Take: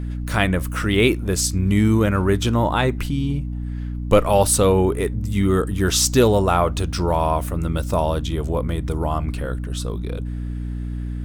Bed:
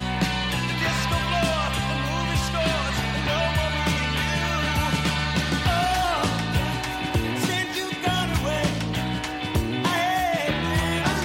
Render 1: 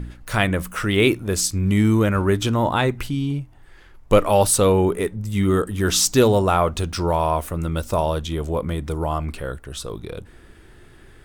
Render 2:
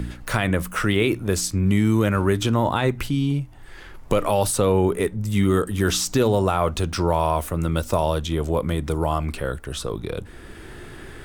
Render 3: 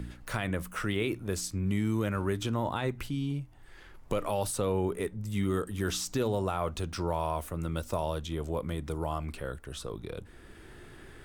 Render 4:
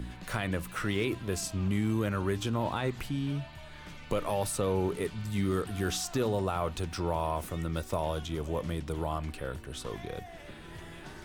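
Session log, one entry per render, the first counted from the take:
de-hum 60 Hz, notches 5
limiter -10.5 dBFS, peak gain reduction 7.5 dB; three-band squash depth 40%
gain -10.5 dB
add bed -24.5 dB

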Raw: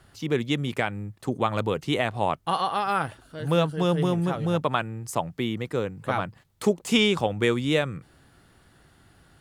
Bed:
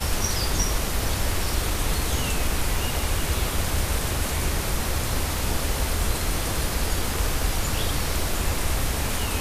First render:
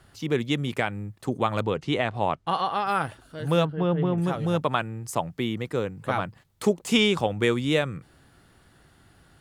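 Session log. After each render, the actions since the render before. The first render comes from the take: 1.61–2.87 air absorption 65 m; 3.65–4.18 air absorption 420 m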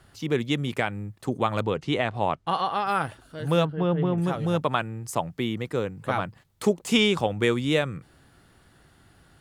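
nothing audible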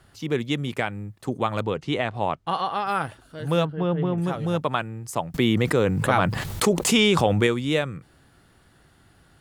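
5.34–7.47 fast leveller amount 70%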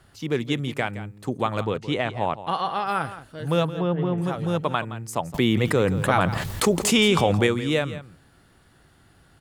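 echo 0.169 s -14 dB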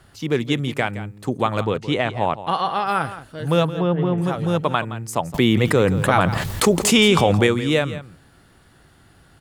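gain +4 dB; limiter -3 dBFS, peak gain reduction 1.5 dB

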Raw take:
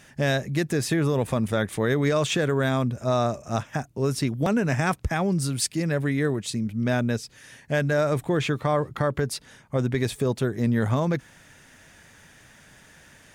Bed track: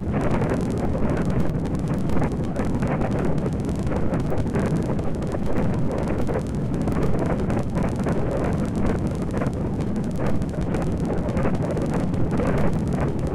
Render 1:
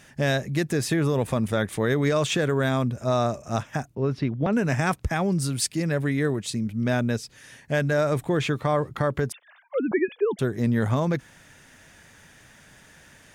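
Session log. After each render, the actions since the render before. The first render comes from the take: 3.95–4.53 air absorption 290 m; 9.32–10.39 sine-wave speech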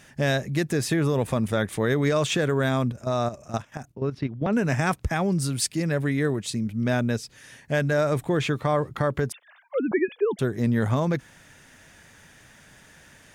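2.92–4.51 level quantiser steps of 12 dB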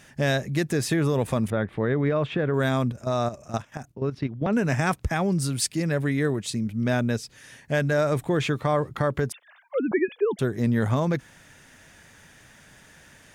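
1.5–2.54 air absorption 470 m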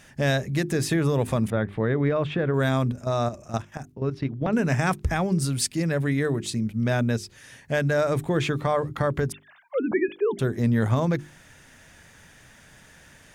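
low shelf 110 Hz +5 dB; notches 50/100/150/200/250/300/350/400 Hz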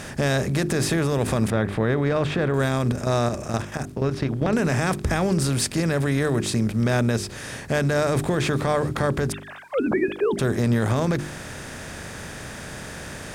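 per-bin compression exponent 0.6; limiter -12.5 dBFS, peak gain reduction 5 dB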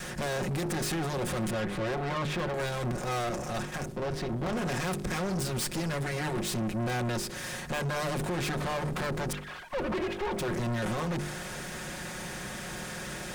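minimum comb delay 5.5 ms; soft clip -28.5 dBFS, distortion -7 dB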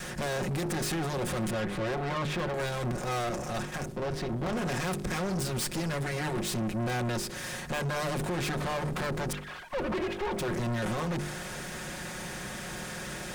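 nothing audible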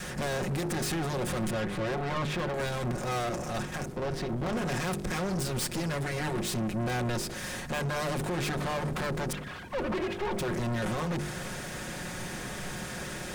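add bed track -22.5 dB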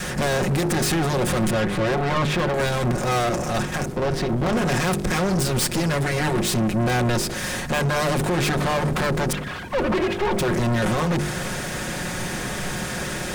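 gain +9.5 dB

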